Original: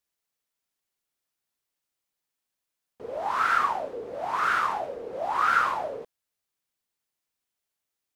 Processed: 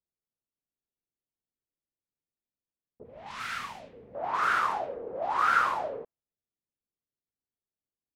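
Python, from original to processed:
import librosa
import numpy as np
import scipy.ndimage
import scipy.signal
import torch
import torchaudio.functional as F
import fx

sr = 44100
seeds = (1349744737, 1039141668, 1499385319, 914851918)

y = fx.env_lowpass(x, sr, base_hz=400.0, full_db=-22.5)
y = fx.band_shelf(y, sr, hz=680.0, db=-14.0, octaves=2.7, at=(3.03, 4.15))
y = F.gain(torch.from_numpy(y), -1.5).numpy()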